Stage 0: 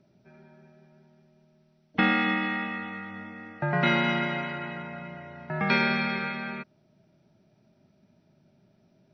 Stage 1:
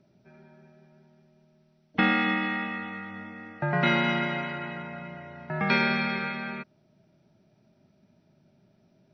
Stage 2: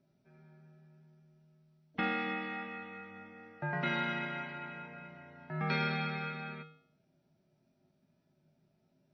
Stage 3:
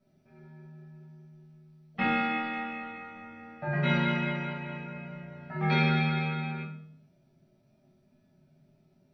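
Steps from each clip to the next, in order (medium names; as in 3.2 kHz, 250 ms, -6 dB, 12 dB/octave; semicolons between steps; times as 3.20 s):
no audible change
feedback comb 52 Hz, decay 0.58 s, harmonics odd, mix 80%
simulated room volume 450 m³, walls furnished, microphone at 6.4 m; trim -4 dB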